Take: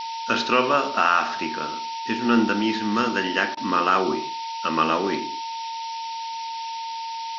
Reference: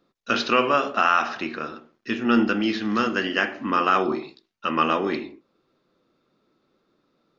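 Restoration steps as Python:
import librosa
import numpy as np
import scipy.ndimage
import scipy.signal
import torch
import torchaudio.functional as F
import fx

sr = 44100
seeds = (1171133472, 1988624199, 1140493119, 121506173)

y = fx.notch(x, sr, hz=910.0, q=30.0)
y = fx.fix_interpolate(y, sr, at_s=(3.55,), length_ms=19.0)
y = fx.noise_reduce(y, sr, print_start_s=6.79, print_end_s=7.29, reduce_db=30.0)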